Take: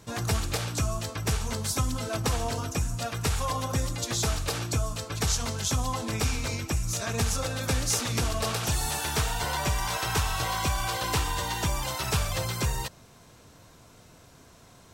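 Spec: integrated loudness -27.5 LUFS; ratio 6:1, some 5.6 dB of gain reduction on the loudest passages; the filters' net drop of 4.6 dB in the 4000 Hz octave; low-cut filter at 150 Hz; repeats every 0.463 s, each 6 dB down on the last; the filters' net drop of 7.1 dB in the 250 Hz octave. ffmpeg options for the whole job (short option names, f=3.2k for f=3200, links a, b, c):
-af "highpass=150,equalizer=f=250:t=o:g=-8.5,equalizer=f=4k:t=o:g=-6,acompressor=threshold=-32dB:ratio=6,aecho=1:1:463|926|1389|1852|2315|2778:0.501|0.251|0.125|0.0626|0.0313|0.0157,volume=7dB"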